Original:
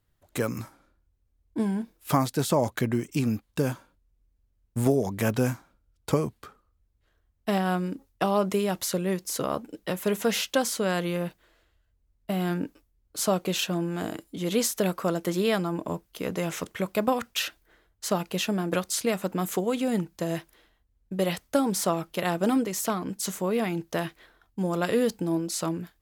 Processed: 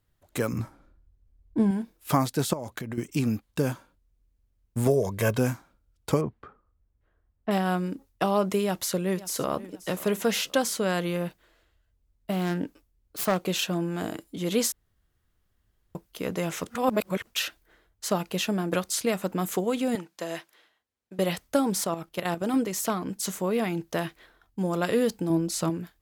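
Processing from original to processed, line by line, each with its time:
0:00.53–0:01.71: spectral tilt −2 dB per octave
0:02.53–0:02.98: downward compressor 16 to 1, threshold −30 dBFS
0:04.87–0:05.38: comb filter 1.9 ms, depth 55%
0:06.21–0:07.51: low-pass filter 1,700 Hz
0:08.63–0:09.68: delay throw 530 ms, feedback 35%, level −17 dB
0:12.32–0:13.39: phase distortion by the signal itself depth 0.18 ms
0:14.72–0:15.95: fill with room tone
0:16.70–0:17.27: reverse
0:19.95–0:21.19: meter weighting curve A
0:21.84–0:22.54: output level in coarse steps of 9 dB
0:25.30–0:25.70: low-shelf EQ 200 Hz +8.5 dB

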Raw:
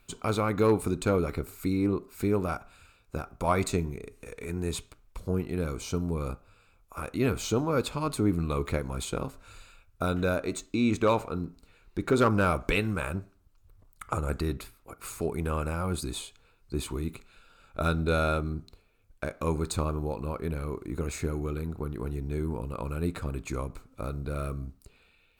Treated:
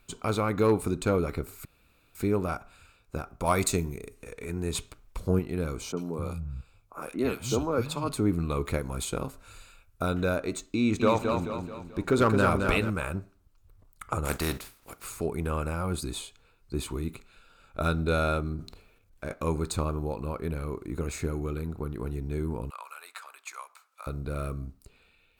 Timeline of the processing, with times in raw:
0:01.65–0:02.15: fill with room tone
0:03.45–0:04.13: high-shelf EQ 4,100 Hz → 7,400 Hz +11 dB
0:04.75–0:05.39: clip gain +4 dB
0:05.92–0:08.09: three-band delay without the direct sound mids, highs, lows 50/260 ms, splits 160/1,900 Hz
0:08.67–0:10.02: parametric band 12,000 Hz +5.5 dB 1.2 octaves
0:10.78–0:12.90: feedback echo with a swinging delay time 217 ms, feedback 45%, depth 55 cents, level −5 dB
0:14.24–0:15.03: compressing power law on the bin magnitudes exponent 0.57
0:18.56–0:19.34: transient designer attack −6 dB, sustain +8 dB
0:22.70–0:24.07: high-pass filter 910 Hz 24 dB per octave

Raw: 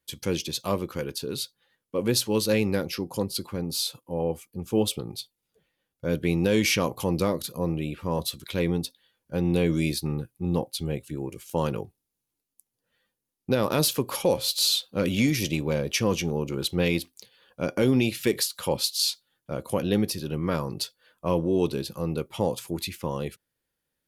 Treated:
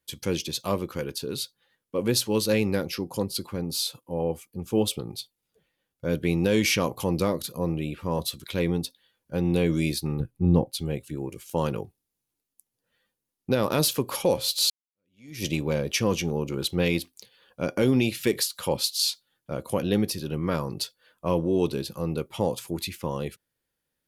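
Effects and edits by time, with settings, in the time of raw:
0:10.20–0:10.72: spectral tilt −2.5 dB per octave
0:14.70–0:15.45: fade in exponential

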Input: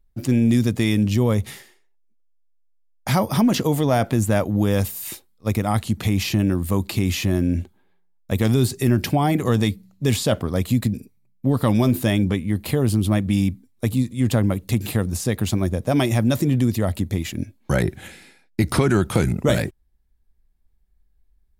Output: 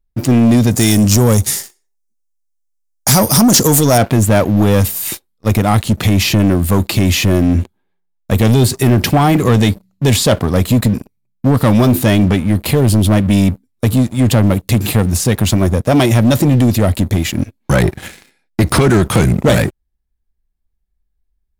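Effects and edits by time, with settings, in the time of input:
0:00.71–0:03.98: high shelf with overshoot 4,300 Hz +12.5 dB, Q 1.5
whole clip: leveller curve on the samples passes 3

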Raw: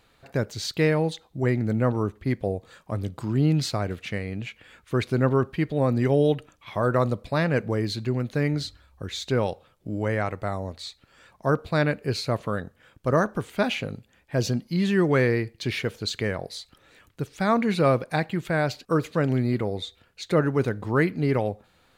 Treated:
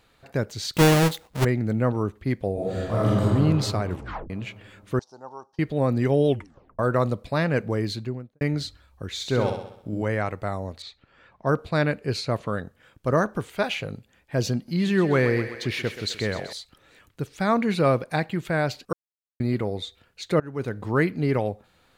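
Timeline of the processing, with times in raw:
0:00.75–0:01.45: each half-wave held at its own peak
0:02.53–0:03.21: thrown reverb, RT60 2.9 s, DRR −11 dB
0:03.90: tape stop 0.40 s
0:04.99–0:05.59: pair of resonant band-passes 2,200 Hz, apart 2.7 octaves
0:06.27: tape stop 0.52 s
0:07.87–0:08.41: fade out and dull
0:09.13–0:10.02: flutter between parallel walls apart 11.1 metres, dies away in 0.67 s
0:10.82–0:12.59: low-pass that shuts in the quiet parts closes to 2,700 Hz, open at −21 dBFS
0:13.48–0:13.88: parametric band 240 Hz −10.5 dB 0.43 octaves
0:14.55–0:16.53: feedback echo with a high-pass in the loop 128 ms, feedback 65%, level −9.5 dB
0:18.93–0:19.40: silence
0:20.40–0:20.85: fade in, from −22.5 dB

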